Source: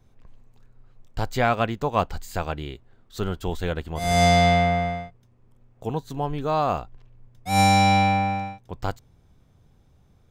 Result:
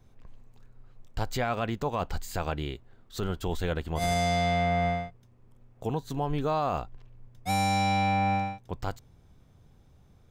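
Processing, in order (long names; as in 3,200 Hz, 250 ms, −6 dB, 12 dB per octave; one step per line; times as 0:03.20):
brickwall limiter −19 dBFS, peak gain reduction 11.5 dB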